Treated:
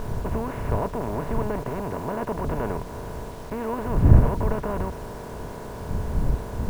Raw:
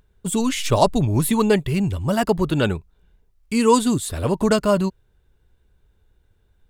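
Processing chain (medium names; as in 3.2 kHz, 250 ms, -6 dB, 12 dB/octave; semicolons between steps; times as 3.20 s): spectral levelling over time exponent 0.2; wind noise 94 Hz -7 dBFS; low-pass 2 kHz 24 dB/octave; bit crusher 5-bit; trim -18 dB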